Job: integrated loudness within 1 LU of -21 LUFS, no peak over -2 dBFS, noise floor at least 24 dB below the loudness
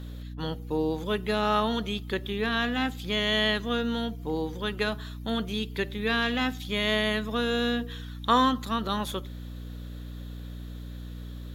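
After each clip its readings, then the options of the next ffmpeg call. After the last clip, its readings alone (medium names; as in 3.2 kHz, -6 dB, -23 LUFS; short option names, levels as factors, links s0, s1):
hum 60 Hz; highest harmonic 300 Hz; hum level -36 dBFS; loudness -28.0 LUFS; peak level -9.5 dBFS; loudness target -21.0 LUFS
-> -af "bandreject=f=60:t=h:w=6,bandreject=f=120:t=h:w=6,bandreject=f=180:t=h:w=6,bandreject=f=240:t=h:w=6,bandreject=f=300:t=h:w=6"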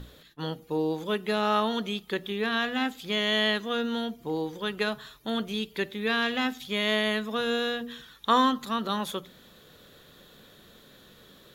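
hum not found; loudness -28.5 LUFS; peak level -10.5 dBFS; loudness target -21.0 LUFS
-> -af "volume=2.37"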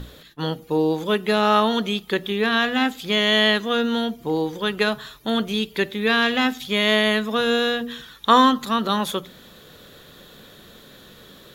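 loudness -21.0 LUFS; peak level -3.0 dBFS; noise floor -47 dBFS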